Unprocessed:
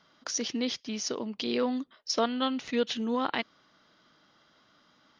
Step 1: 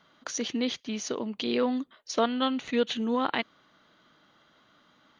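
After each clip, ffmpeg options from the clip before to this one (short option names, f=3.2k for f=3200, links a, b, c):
-af "equalizer=f=5.2k:w=6.2:g=-15,volume=2dB"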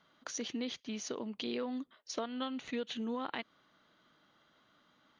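-af "acompressor=threshold=-27dB:ratio=6,volume=-6.5dB"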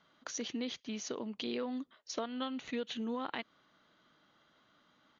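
-af "aresample=16000,aresample=44100"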